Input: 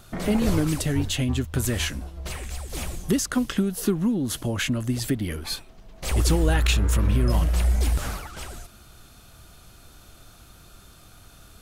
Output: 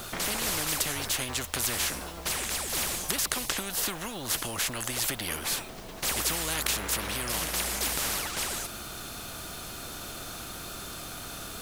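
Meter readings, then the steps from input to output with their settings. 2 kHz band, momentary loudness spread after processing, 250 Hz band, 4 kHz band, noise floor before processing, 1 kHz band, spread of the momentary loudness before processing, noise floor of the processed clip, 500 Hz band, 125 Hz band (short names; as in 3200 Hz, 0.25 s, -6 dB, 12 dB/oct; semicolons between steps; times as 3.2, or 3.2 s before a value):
+0.5 dB, 11 LU, -14.5 dB, +2.0 dB, -51 dBFS, +1.0 dB, 13 LU, -41 dBFS, -7.5 dB, -16.5 dB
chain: bit-crush 10-bit; spectral compressor 4:1; gain +2 dB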